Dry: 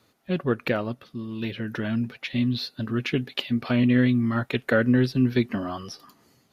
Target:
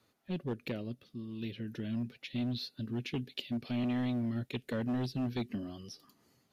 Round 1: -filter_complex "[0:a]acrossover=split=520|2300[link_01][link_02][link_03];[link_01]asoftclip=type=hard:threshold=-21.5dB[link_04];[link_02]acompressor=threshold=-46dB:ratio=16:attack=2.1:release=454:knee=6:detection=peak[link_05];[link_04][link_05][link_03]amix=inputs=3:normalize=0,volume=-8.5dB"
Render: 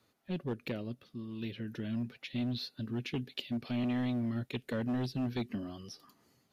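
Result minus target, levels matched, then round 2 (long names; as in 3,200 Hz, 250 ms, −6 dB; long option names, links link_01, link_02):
downward compressor: peak gain reduction −7.5 dB
-filter_complex "[0:a]acrossover=split=520|2300[link_01][link_02][link_03];[link_01]asoftclip=type=hard:threshold=-21.5dB[link_04];[link_02]acompressor=threshold=-54dB:ratio=16:attack=2.1:release=454:knee=6:detection=peak[link_05];[link_04][link_05][link_03]amix=inputs=3:normalize=0,volume=-8.5dB"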